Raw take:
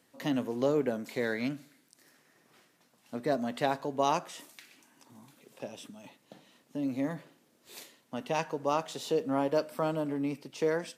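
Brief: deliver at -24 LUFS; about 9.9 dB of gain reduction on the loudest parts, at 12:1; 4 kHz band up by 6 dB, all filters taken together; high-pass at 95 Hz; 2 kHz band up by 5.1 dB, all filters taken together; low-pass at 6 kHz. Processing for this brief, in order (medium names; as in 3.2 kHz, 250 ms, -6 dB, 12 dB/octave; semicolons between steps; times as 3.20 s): high-pass 95 Hz; low-pass 6 kHz; peaking EQ 2 kHz +5 dB; peaking EQ 4 kHz +6.5 dB; compression 12:1, threshold -32 dBFS; trim +15 dB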